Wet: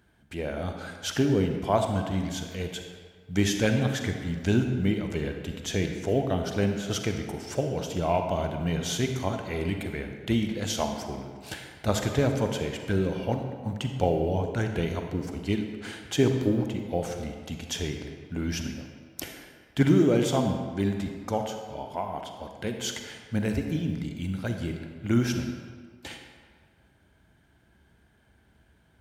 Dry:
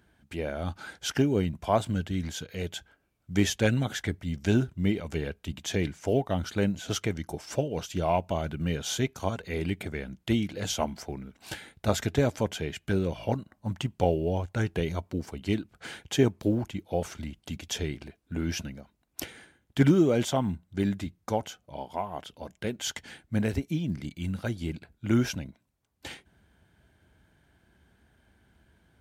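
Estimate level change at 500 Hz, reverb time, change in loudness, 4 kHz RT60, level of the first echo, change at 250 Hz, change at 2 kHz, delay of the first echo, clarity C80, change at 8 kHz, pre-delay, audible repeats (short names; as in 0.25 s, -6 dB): +1.5 dB, 1.7 s, +1.5 dB, 1.1 s, none, +1.5 dB, +1.0 dB, none, 6.5 dB, +0.5 dB, 36 ms, none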